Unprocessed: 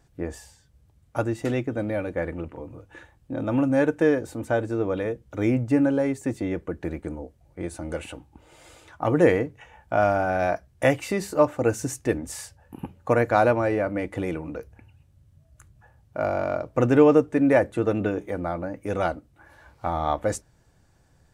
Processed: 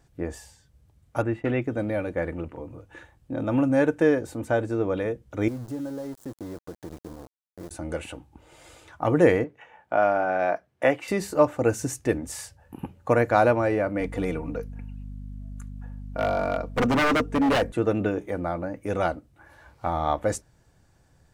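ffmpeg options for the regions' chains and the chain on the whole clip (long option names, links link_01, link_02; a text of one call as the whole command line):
ffmpeg -i in.wav -filter_complex "[0:a]asettb=1/sr,asplit=3[link_01][link_02][link_03];[link_01]atrim=end=1.224[link_04];[link_02]atrim=start=1.22:end=1.62,asetpts=PTS-STARTPTS,afade=type=in:duration=0.004:curve=qsin,afade=type=out:start_time=0.396:duration=0.004:curve=qsin,acrossover=split=4700[link_05][link_06];[link_06]acompressor=threshold=-53dB:ratio=4:attack=1:release=60[link_07];[link_05][link_07]amix=inputs=2:normalize=0,highshelf=frequency=3600:width_type=q:width=1.5:gain=-13,agate=range=-33dB:threshold=-38dB:ratio=3:release=100:detection=peak[link_08];[link_03]atrim=start=1.616[link_09];[link_04][link_08]acrossfade=duration=0.004:curve1=hsin:curve2=qsin[link_10];[link_10][link_09]acrossfade=duration=0.004:curve1=qsin:curve2=hsin,asettb=1/sr,asplit=3[link_11][link_12][link_13];[link_11]atrim=end=5.484[link_14];[link_12]atrim=start=5.48:end=7.71,asetpts=PTS-STARTPTS,afade=type=in:duration=0.004:curve=qsin,afade=type=out:start_time=2.226:duration=0.004:curve=qsin,acompressor=threshold=-39dB:ratio=2:attack=3.2:release=140:knee=1:detection=peak,aeval=exprs='val(0)*gte(abs(val(0)),0.0106)':channel_layout=same,equalizer=frequency=2400:width=1.1:gain=-12[link_15];[link_13]atrim=start=7.706[link_16];[link_14][link_15]acrossfade=duration=0.004:curve1=hsin:curve2=qsin[link_17];[link_17][link_16]acrossfade=duration=0.004:curve1=qsin:curve2=hsin,asettb=1/sr,asplit=3[link_18][link_19][link_20];[link_18]atrim=end=9.444[link_21];[link_19]atrim=start=9.44:end=11.08,asetpts=PTS-STARTPTS,afade=type=in:duration=0.004:curve=qsin,afade=type=out:start_time=1.636:duration=0.004:curve=qsin,highpass=160,bass=frequency=250:gain=-6,treble=frequency=4000:gain=-12[link_22];[link_20]atrim=start=11.076[link_23];[link_21][link_22]acrossfade=duration=0.004:curve1=hsin:curve2=qsin[link_24];[link_24][link_23]acrossfade=duration=0.004:curve1=qsin:curve2=hsin,asettb=1/sr,asplit=3[link_25][link_26][link_27];[link_25]atrim=end=14.004[link_28];[link_26]atrim=start=14:end=17.72,asetpts=PTS-STARTPTS,afade=type=in:duration=0.004:curve=qsin,afade=type=out:start_time=3.716:duration=0.004:curve=qsin,aecho=1:1:4.3:0.56,atrim=end_sample=164052,aeval=exprs='val(0)+0.0158*(sin(2*PI*50*n/s)+sin(2*PI*2*50*n/s)/2+sin(2*PI*3*50*n/s)/3+sin(2*PI*4*50*n/s)/4+sin(2*PI*5*50*n/s)/5)':channel_layout=same,aeval=exprs='0.158*(abs(mod(val(0)/0.158+3,4)-2)-1)':channel_layout=same[link_29];[link_27]atrim=start=17.716[link_30];[link_28][link_29]acrossfade=duration=0.004:curve1=hsin:curve2=qsin[link_31];[link_31][link_30]acrossfade=duration=0.004:curve1=qsin:curve2=hsin" out.wav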